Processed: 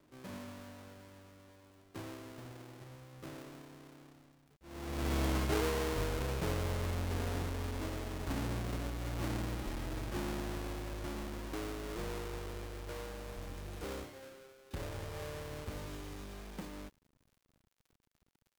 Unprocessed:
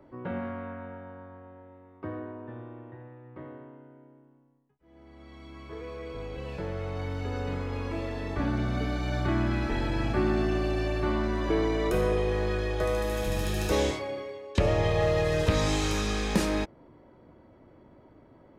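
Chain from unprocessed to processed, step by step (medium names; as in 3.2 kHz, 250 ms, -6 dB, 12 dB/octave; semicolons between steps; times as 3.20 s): square wave that keeps the level; Doppler pass-by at 5.15 s, 14 m/s, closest 3.1 m; companded quantiser 8-bit; crackle 43 per s -66 dBFS; trim +10.5 dB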